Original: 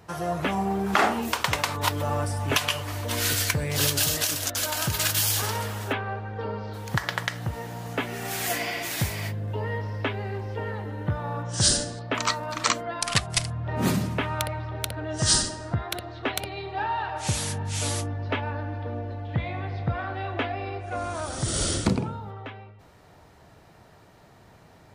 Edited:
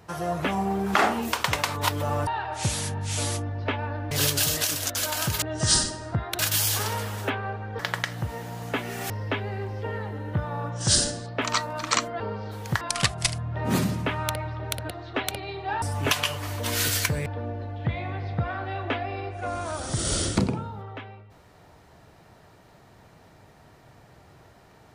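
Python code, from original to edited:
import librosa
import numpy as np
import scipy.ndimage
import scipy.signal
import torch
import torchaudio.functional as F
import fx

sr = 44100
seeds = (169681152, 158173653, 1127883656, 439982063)

y = fx.edit(x, sr, fx.swap(start_s=2.27, length_s=1.44, other_s=16.91, other_length_s=1.84),
    fx.move(start_s=6.42, length_s=0.61, to_s=12.93),
    fx.cut(start_s=8.34, length_s=1.49),
    fx.move(start_s=15.01, length_s=0.97, to_s=5.02), tone=tone)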